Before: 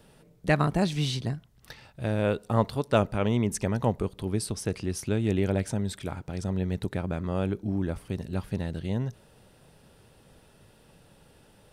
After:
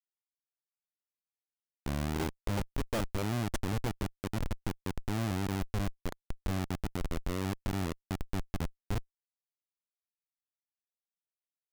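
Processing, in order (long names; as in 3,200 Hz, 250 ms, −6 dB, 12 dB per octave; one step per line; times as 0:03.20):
turntable start at the beginning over 2.88 s
comparator with hysteresis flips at −24.5 dBFS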